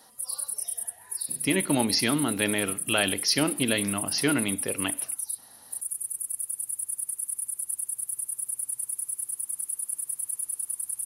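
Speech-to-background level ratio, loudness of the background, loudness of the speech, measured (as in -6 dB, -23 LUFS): 3.5 dB, -30.0 LUFS, -26.5 LUFS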